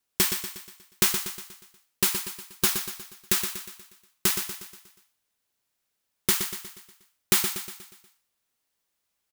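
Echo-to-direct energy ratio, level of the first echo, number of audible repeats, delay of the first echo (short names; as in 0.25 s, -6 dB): -7.0 dB, -8.0 dB, 5, 0.12 s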